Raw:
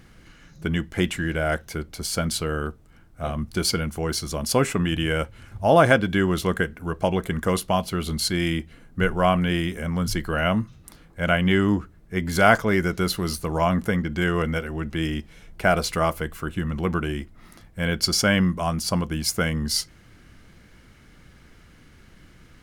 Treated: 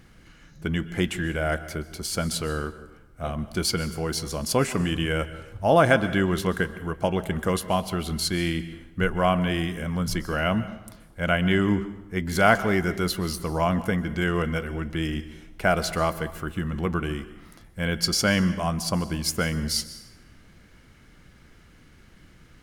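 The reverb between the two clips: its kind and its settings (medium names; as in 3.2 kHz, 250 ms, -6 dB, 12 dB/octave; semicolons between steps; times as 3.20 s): plate-style reverb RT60 0.9 s, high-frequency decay 0.8×, pre-delay 115 ms, DRR 14 dB; trim -2 dB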